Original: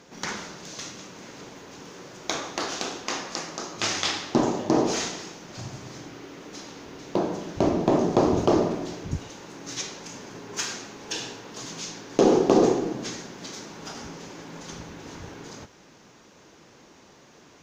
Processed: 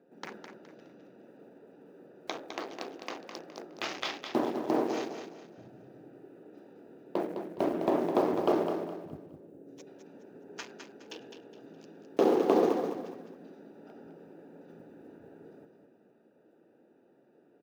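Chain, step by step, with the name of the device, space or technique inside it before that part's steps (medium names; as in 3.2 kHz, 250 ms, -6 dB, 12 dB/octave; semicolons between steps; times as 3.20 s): local Wiener filter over 41 samples; early digital voice recorder (band-pass 290–3400 Hz; block-companded coder 7-bit); 9.10–9.87 s: high-order bell 2.1 kHz -11.5 dB 3 oct; feedback delay 208 ms, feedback 32%, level -7.5 dB; trim -4.5 dB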